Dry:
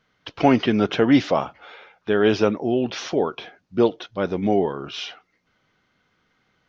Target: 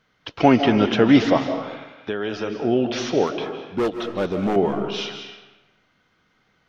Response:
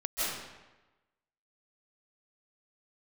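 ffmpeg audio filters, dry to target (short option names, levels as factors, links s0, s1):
-filter_complex "[0:a]asettb=1/sr,asplit=3[s0][s1][s2];[s0]atrim=end=1.374[s3];[s1]atrim=start=1.37:end=2.6,asetpts=PTS-STARTPTS,afade=t=in:d=0.004:c=qsin,afade=t=out:st=1.226:d=0.004:c=qsin,acrossover=split=450|1900[s4][s5][s6];[s4]acompressor=threshold=0.0251:ratio=4[s7];[s5]acompressor=threshold=0.0224:ratio=4[s8];[s6]acompressor=threshold=0.0112:ratio=4[s9];[s7][s8][s9]amix=inputs=3:normalize=0[s10];[s2]atrim=start=2.596[s11];[s3][s10]acrossfade=d=0.004:c1=hsin:c2=qsin[s12];[s12][s11]acrossfade=d=0.004:c1=qsin:c2=hsin,asettb=1/sr,asplit=3[s13][s14][s15];[s13]atrim=end=3.274[s16];[s14]atrim=start=3.27:end=4.56,asetpts=PTS-STARTPTS,afade=t=in:d=0.004:c=qsin,afade=t=out:st=1.286:d=0.004:c=qsin,volume=9.44,asoftclip=hard,volume=0.106[s17];[s15]atrim=start=4.556[s18];[s16][s17]acrossfade=d=0.004:c1=hsin:c2=qsin[s19];[s19][s18]acrossfade=d=0.004:c1=qsin:c2=hsin,asplit=2[s20][s21];[1:a]atrim=start_sample=2205[s22];[s21][s22]afir=irnorm=-1:irlink=0,volume=0.237[s23];[s20][s23]amix=inputs=2:normalize=0"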